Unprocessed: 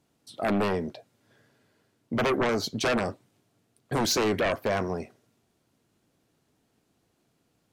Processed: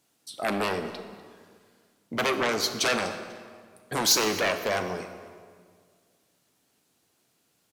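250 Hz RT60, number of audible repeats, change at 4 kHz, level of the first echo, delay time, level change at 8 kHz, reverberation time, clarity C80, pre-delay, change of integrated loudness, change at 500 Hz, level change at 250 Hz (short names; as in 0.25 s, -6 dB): 2.1 s, 2, +5.5 dB, -21.0 dB, 0.247 s, +7.0 dB, 1.8 s, 10.0 dB, 15 ms, +1.0 dB, -1.5 dB, -4.0 dB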